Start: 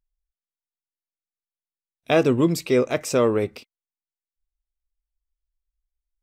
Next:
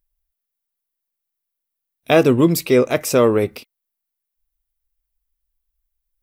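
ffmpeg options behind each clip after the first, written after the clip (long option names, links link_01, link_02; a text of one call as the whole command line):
ffmpeg -i in.wav -af "aexciter=amount=3.3:drive=4.6:freq=10000,volume=5dB" out.wav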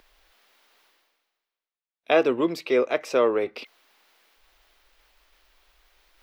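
ffmpeg -i in.wav -filter_complex "[0:a]acrossover=split=310 4700:gain=0.0708 1 0.0708[link_01][link_02][link_03];[link_01][link_02][link_03]amix=inputs=3:normalize=0,areverse,acompressor=mode=upward:threshold=-28dB:ratio=2.5,areverse,volume=-4.5dB" out.wav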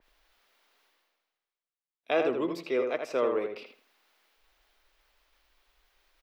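ffmpeg -i in.wav -filter_complex "[0:a]asplit=2[link_01][link_02];[link_02]adelay=81,lowpass=frequency=2900:poles=1,volume=-5dB,asplit=2[link_03][link_04];[link_04]adelay=81,lowpass=frequency=2900:poles=1,volume=0.27,asplit=2[link_05][link_06];[link_06]adelay=81,lowpass=frequency=2900:poles=1,volume=0.27,asplit=2[link_07][link_08];[link_08]adelay=81,lowpass=frequency=2900:poles=1,volume=0.27[link_09];[link_03][link_05][link_07][link_09]amix=inputs=4:normalize=0[link_10];[link_01][link_10]amix=inputs=2:normalize=0,adynamicequalizer=threshold=0.00708:dfrequency=3600:dqfactor=0.7:tfrequency=3600:tqfactor=0.7:attack=5:release=100:ratio=0.375:range=1.5:mode=cutabove:tftype=highshelf,volume=-7.5dB" out.wav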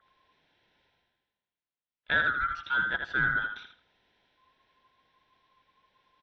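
ffmpeg -i in.wav -af "afftfilt=real='real(if(lt(b,960),b+48*(1-2*mod(floor(b/48),2)),b),0)':imag='imag(if(lt(b,960),b+48*(1-2*mod(floor(b/48),2)),b),0)':win_size=2048:overlap=0.75,lowpass=frequency=4100:width=0.5412,lowpass=frequency=4100:width=1.3066" out.wav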